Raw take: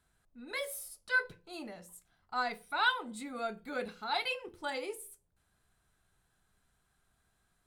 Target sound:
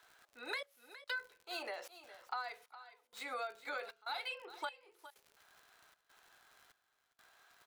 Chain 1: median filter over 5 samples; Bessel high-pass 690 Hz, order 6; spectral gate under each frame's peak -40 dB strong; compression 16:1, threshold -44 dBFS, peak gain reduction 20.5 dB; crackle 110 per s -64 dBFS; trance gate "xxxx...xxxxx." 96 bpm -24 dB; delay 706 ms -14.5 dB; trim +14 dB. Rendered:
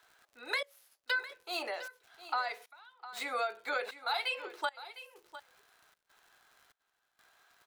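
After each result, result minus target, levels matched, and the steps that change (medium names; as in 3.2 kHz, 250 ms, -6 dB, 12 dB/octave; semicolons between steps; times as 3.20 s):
echo 293 ms late; compression: peak gain reduction -8 dB
change: delay 413 ms -14.5 dB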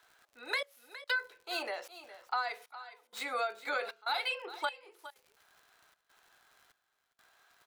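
compression: peak gain reduction -8 dB
change: compression 16:1, threshold -52.5 dBFS, peak gain reduction 28.5 dB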